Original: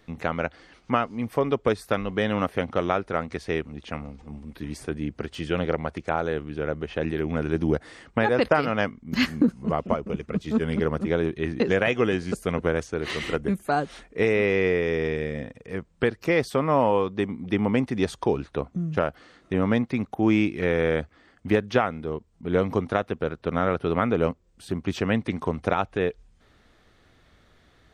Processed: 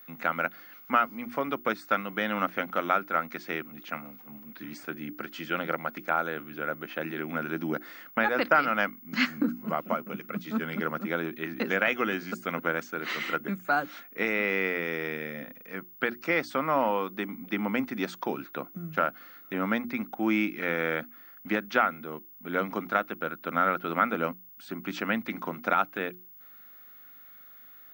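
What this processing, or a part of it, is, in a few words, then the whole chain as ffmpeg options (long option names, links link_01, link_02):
old television with a line whistle: -af "highpass=frequency=190:width=0.5412,highpass=frequency=190:width=1.3066,equalizer=frequency=430:width_type=q:width=4:gain=-9,equalizer=frequency=1400:width_type=q:width=4:gain=10,equalizer=frequency=2200:width_type=q:width=4:gain=5,lowpass=frequency=7600:width=0.5412,lowpass=frequency=7600:width=1.3066,bandreject=frequency=60:width_type=h:width=6,bandreject=frequency=120:width_type=h:width=6,bandreject=frequency=180:width_type=h:width=6,bandreject=frequency=240:width_type=h:width=6,bandreject=frequency=300:width_type=h:width=6,bandreject=frequency=360:width_type=h:width=6,aeval=exprs='val(0)+0.00631*sin(2*PI*15625*n/s)':channel_layout=same,volume=-4dB"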